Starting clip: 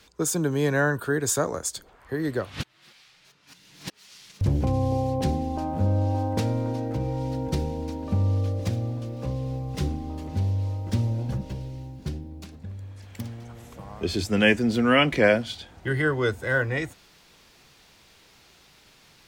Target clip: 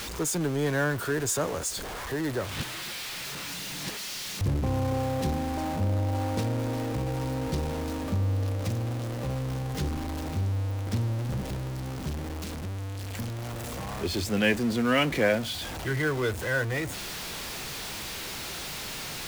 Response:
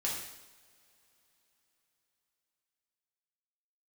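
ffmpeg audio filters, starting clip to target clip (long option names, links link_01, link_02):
-af "aeval=exprs='val(0)+0.5*0.0562*sgn(val(0))':channel_layout=same,volume=-6dB"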